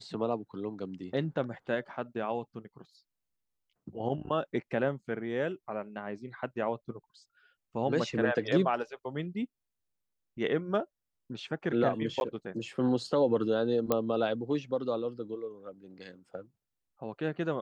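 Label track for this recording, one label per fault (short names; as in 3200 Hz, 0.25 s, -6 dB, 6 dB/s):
12.200000	12.210000	gap 11 ms
13.920000	13.920000	pop -13 dBFS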